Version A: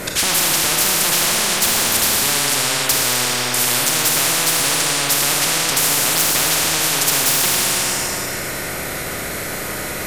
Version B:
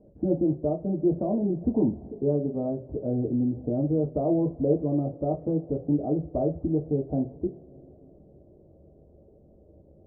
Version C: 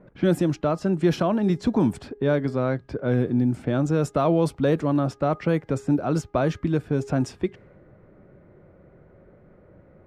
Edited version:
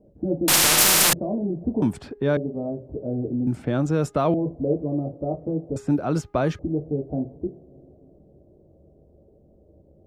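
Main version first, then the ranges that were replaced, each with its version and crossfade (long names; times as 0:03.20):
B
0:00.48–0:01.13: punch in from A
0:01.82–0:02.37: punch in from C
0:03.47–0:04.34: punch in from C
0:05.76–0:06.59: punch in from C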